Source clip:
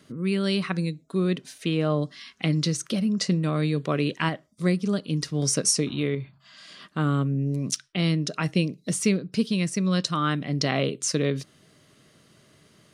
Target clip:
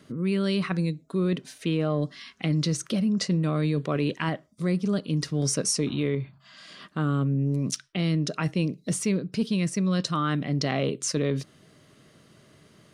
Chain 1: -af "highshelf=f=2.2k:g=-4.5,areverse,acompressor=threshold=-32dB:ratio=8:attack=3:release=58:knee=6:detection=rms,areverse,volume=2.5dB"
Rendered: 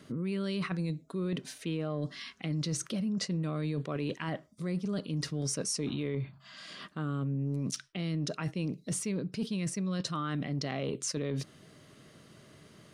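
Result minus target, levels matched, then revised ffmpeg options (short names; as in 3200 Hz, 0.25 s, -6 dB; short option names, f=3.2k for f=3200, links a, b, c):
compressor: peak gain reduction +9 dB
-af "highshelf=f=2.2k:g=-4.5,areverse,acompressor=threshold=-21.5dB:ratio=8:attack=3:release=58:knee=6:detection=rms,areverse,volume=2.5dB"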